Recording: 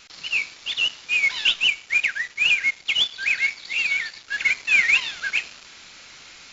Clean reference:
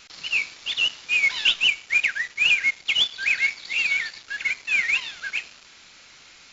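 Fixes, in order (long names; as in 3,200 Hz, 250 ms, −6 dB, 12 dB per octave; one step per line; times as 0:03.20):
level 0 dB, from 0:04.32 −4.5 dB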